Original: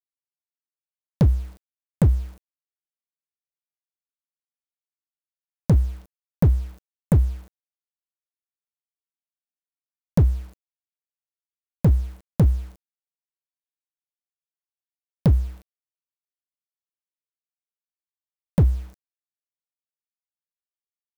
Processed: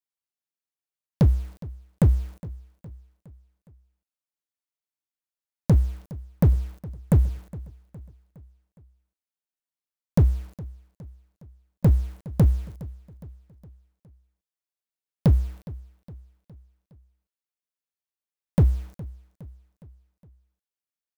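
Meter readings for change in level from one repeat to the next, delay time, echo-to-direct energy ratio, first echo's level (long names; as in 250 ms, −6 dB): −6.0 dB, 413 ms, −17.5 dB, −19.0 dB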